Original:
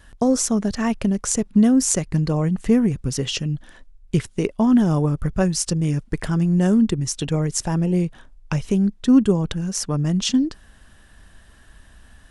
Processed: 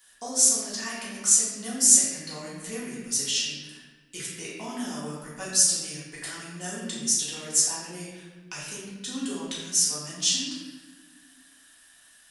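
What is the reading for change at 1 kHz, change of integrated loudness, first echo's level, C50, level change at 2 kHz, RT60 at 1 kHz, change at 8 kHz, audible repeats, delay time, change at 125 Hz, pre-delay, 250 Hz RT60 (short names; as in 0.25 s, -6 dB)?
-9.5 dB, -3.0 dB, none, 0.0 dB, -2.5 dB, 1.2 s, +6.0 dB, none, none, -23.0 dB, 3 ms, 2.2 s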